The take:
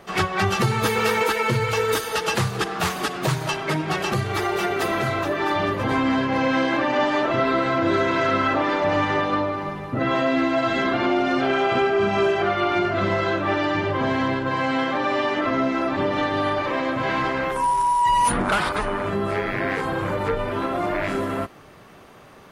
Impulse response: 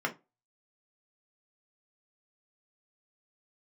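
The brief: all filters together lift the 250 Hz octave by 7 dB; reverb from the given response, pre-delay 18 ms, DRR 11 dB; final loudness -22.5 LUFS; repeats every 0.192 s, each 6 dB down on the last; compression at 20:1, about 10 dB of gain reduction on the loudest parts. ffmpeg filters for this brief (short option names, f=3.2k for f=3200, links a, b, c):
-filter_complex "[0:a]equalizer=f=250:t=o:g=8.5,acompressor=threshold=-22dB:ratio=20,aecho=1:1:192|384|576|768|960|1152:0.501|0.251|0.125|0.0626|0.0313|0.0157,asplit=2[a][b];[1:a]atrim=start_sample=2205,adelay=18[c];[b][c]afir=irnorm=-1:irlink=0,volume=-18.5dB[d];[a][d]amix=inputs=2:normalize=0,volume=2dB"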